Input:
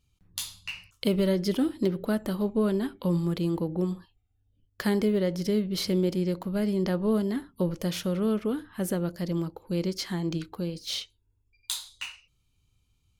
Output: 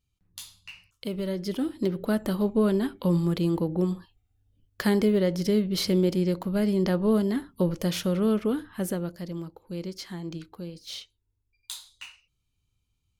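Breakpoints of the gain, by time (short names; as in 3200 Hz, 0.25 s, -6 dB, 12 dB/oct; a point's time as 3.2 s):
1.06 s -7.5 dB
2.23 s +2.5 dB
8.65 s +2.5 dB
9.34 s -6 dB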